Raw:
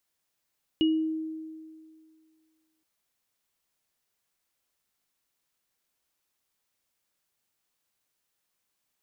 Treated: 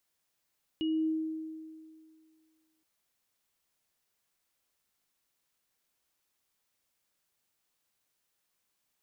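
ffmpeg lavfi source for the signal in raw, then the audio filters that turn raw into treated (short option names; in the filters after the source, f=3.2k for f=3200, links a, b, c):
-f lavfi -i "aevalsrc='0.112*pow(10,-3*t/2.07)*sin(2*PI*317*t)+0.0447*pow(10,-3*t/0.33)*sin(2*PI*2900*t)':d=2.02:s=44100"
-af "alimiter=level_in=2.5dB:limit=-24dB:level=0:latency=1,volume=-2.5dB"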